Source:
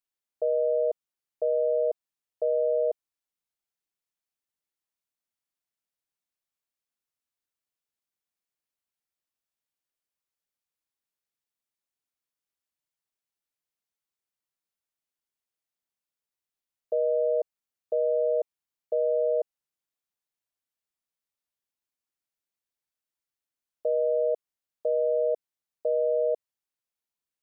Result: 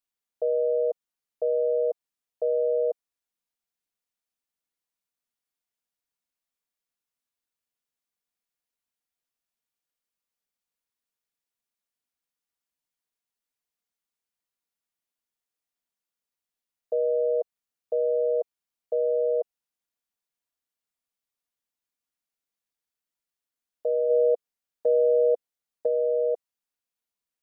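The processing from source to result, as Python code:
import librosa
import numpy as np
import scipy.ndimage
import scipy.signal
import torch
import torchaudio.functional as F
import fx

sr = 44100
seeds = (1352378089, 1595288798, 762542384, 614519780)

y = x + 0.32 * np.pad(x, (int(4.2 * sr / 1000.0), 0))[:len(x)]
y = fx.dynamic_eq(y, sr, hz=520.0, q=2.7, threshold_db=-38.0, ratio=4.0, max_db=5, at=(24.09, 25.86), fade=0.02)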